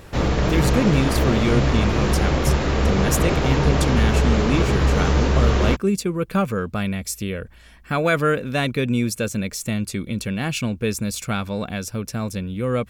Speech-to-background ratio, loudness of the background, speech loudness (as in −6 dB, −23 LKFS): −4.0 dB, −20.5 LKFS, −24.5 LKFS